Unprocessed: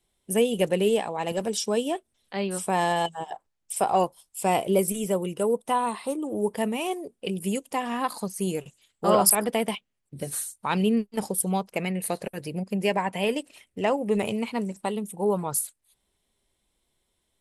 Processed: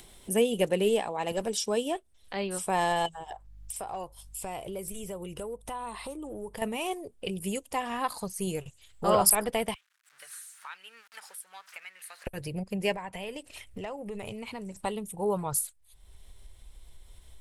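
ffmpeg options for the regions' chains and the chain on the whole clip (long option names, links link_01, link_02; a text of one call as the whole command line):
ffmpeg -i in.wav -filter_complex "[0:a]asettb=1/sr,asplit=3[link_01][link_02][link_03];[link_01]atrim=end=3.134[link_04];[link_02]atrim=start=3.13:end=6.62,asetpts=PTS-STARTPTS,afade=type=in:duration=0.004:curve=qsin,afade=type=out:start_time=3.486:duration=0.004:curve=qsin,acompressor=threshold=-36dB:ratio=2.5:attack=3.2:release=140:knee=1:detection=peak,aeval=exprs='clip(val(0),-1,0.0398)':channel_layout=same,aeval=exprs='val(0)+0.000355*(sin(2*PI*50*n/s)+sin(2*PI*2*50*n/s)/2+sin(2*PI*3*50*n/s)/3+sin(2*PI*4*50*n/s)/4+sin(2*PI*5*50*n/s)/5)':channel_layout=same[link_05];[link_03]atrim=start=6.616[link_06];[link_04][link_05]acrossfade=duration=0.004:curve1=hsin:curve2=qsin[link_07];[link_07][link_06]acrossfade=duration=0.004:curve1=qsin:curve2=hsin,asettb=1/sr,asplit=3[link_08][link_09][link_10];[link_08]atrim=end=9.744[link_11];[link_09]atrim=start=9.74:end=12.27,asetpts=PTS-STARTPTS,afade=type=in:duration=0.004:curve=qsin,afade=type=out:start_time=2.526:duration=0.004:curve=qsin,aeval=exprs='val(0)+0.5*0.0126*sgn(val(0))':channel_layout=same,bandpass=frequency=1500:width_type=q:width=2.4,aderivative[link_12];[link_10]atrim=start=12.266[link_13];[link_11][link_12]acrossfade=duration=0.004:curve1=hsin:curve2=qsin[link_14];[link_14][link_13]acrossfade=duration=0.004:curve1=qsin:curve2=hsin,asettb=1/sr,asplit=3[link_15][link_16][link_17];[link_15]atrim=end=12.944[link_18];[link_16]atrim=start=12.94:end=14.77,asetpts=PTS-STARTPTS,afade=type=in:duration=0.004:curve=qsin,afade=type=out:start_time=1.826:duration=0.004:curve=qsin,acompressor=threshold=-34dB:ratio=3:attack=3.2:release=140:knee=1:detection=peak,asoftclip=type=hard:threshold=-24.5dB[link_19];[link_17]atrim=start=14.766[link_20];[link_18][link_19]acrossfade=duration=0.004:curve1=hsin:curve2=qsin[link_21];[link_21][link_20]acrossfade=duration=0.004:curve1=qsin:curve2=hsin,asubboost=boost=10.5:cutoff=69,acompressor=mode=upward:threshold=-32dB:ratio=2.5,volume=-2dB" out.wav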